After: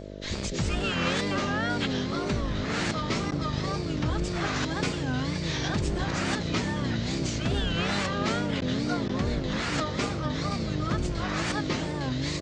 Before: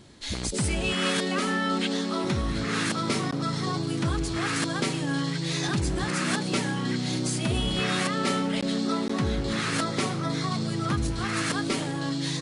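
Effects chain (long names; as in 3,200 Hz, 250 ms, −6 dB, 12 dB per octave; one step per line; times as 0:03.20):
Butterworth low-pass 7,400 Hz 48 dB per octave
pitch-shifted copies added −12 semitones −5 dB
tape wow and flutter 150 cents
hum with harmonics 50 Hz, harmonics 13, −38 dBFS −1 dB per octave
level −2.5 dB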